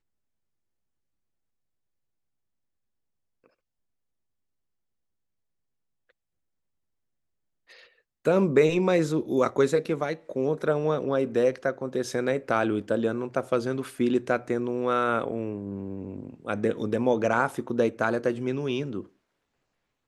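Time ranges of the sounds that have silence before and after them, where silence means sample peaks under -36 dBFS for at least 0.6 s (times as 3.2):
8.25–19.01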